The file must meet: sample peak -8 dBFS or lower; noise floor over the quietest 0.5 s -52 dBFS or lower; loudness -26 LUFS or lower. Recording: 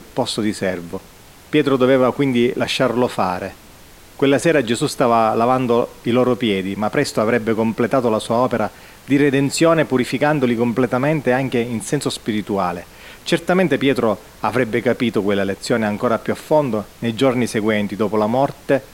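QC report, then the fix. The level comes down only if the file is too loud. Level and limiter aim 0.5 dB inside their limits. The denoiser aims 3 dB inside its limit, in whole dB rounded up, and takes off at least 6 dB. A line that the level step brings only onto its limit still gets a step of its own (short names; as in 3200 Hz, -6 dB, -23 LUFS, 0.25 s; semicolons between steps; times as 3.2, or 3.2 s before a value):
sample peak -2.5 dBFS: fail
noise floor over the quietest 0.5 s -43 dBFS: fail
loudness -18.5 LUFS: fail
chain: denoiser 6 dB, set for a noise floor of -43 dBFS; gain -8 dB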